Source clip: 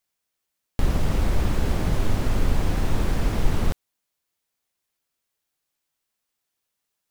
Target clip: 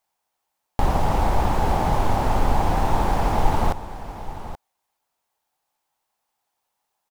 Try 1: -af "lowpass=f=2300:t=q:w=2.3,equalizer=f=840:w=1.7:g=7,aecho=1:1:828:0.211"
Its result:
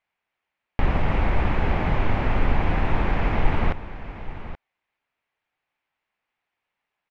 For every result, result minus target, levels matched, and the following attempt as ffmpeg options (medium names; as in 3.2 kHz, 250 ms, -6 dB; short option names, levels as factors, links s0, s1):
2 kHz band +5.5 dB; 1 kHz band -5.0 dB
-af "equalizer=f=840:w=1.7:g=7,aecho=1:1:828:0.211"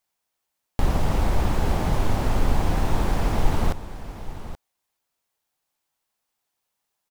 1 kHz band -5.5 dB
-af "equalizer=f=840:w=1.7:g=17,aecho=1:1:828:0.211"